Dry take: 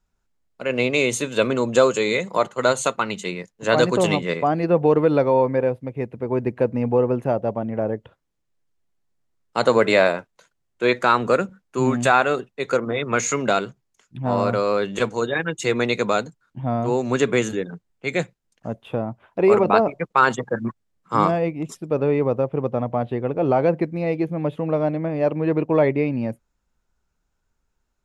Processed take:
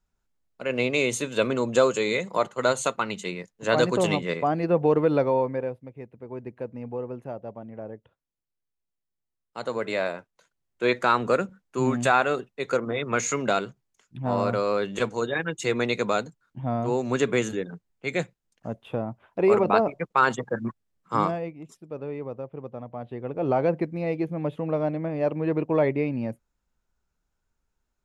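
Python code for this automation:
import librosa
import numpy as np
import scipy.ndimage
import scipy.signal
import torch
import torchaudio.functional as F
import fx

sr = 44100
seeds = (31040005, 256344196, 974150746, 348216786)

y = fx.gain(x, sr, db=fx.line((5.24, -4.0), (6.03, -14.0), (9.61, -14.0), (10.85, -4.0), (21.15, -4.0), (21.61, -14.0), (22.92, -14.0), (23.52, -4.5)))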